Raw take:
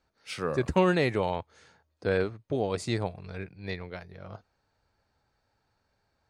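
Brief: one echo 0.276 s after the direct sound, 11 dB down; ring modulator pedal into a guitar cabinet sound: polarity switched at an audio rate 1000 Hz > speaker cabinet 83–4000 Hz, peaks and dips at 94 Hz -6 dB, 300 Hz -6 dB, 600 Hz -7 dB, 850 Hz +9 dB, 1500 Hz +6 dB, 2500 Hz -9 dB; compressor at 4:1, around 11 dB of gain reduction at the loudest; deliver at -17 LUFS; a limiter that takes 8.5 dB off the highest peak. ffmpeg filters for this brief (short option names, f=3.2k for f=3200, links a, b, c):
-af "acompressor=threshold=-31dB:ratio=4,alimiter=level_in=4.5dB:limit=-24dB:level=0:latency=1,volume=-4.5dB,aecho=1:1:276:0.282,aeval=exprs='val(0)*sgn(sin(2*PI*1000*n/s))':c=same,highpass=83,equalizer=f=94:t=q:w=4:g=-6,equalizer=f=300:t=q:w=4:g=-6,equalizer=f=600:t=q:w=4:g=-7,equalizer=f=850:t=q:w=4:g=9,equalizer=f=1.5k:t=q:w=4:g=6,equalizer=f=2.5k:t=q:w=4:g=-9,lowpass=f=4k:w=0.5412,lowpass=f=4k:w=1.3066,volume=20.5dB"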